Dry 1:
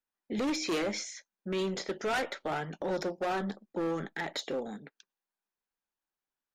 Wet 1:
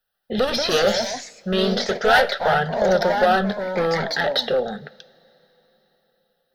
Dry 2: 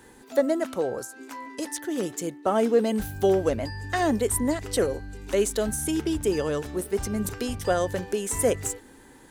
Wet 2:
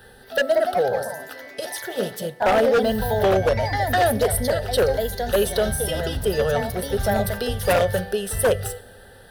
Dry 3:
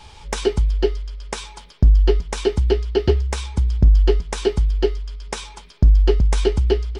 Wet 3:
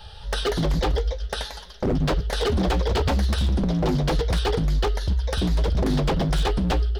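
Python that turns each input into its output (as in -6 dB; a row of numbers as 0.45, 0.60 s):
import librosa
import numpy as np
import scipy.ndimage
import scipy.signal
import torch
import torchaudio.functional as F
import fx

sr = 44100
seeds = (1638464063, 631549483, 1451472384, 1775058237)

y = fx.fixed_phaser(x, sr, hz=1500.0, stages=8)
y = fx.rev_double_slope(y, sr, seeds[0], early_s=0.48, late_s=4.6, knee_db=-21, drr_db=15.5)
y = fx.echo_pitch(y, sr, ms=226, semitones=2, count=2, db_per_echo=-6.0)
y = 10.0 ** (-19.5 / 20.0) * (np.abs((y / 10.0 ** (-19.5 / 20.0) + 3.0) % 4.0 - 2.0) - 1.0)
y = y * 10.0 ** (-22 / 20.0) / np.sqrt(np.mean(np.square(y)))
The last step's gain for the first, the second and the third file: +16.5, +8.0, +3.0 dB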